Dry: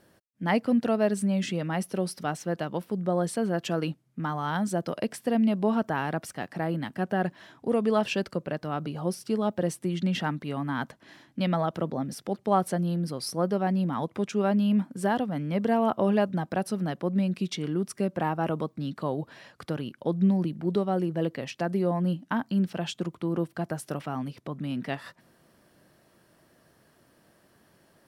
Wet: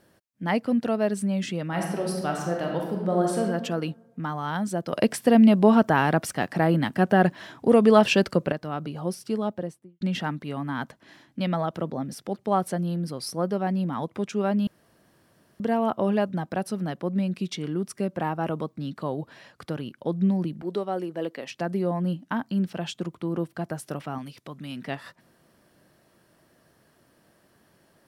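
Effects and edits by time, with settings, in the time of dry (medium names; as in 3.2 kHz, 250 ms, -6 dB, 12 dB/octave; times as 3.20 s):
1.67–3.42 s: reverb throw, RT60 1.2 s, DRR 0 dB
4.93–8.52 s: gain +8 dB
9.34–10.01 s: studio fade out
14.67–15.60 s: room tone
20.62–21.49 s: high-pass 300 Hz
24.18–24.84 s: tilt shelf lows -5.5 dB, about 1.5 kHz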